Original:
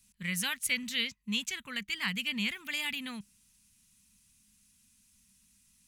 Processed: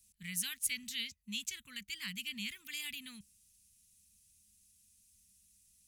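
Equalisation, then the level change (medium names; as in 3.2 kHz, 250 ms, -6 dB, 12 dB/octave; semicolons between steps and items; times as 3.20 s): amplifier tone stack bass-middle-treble 6-0-2; peaking EQ 80 Hz +6 dB 0.36 oct; treble shelf 4.3 kHz +8 dB; +7.0 dB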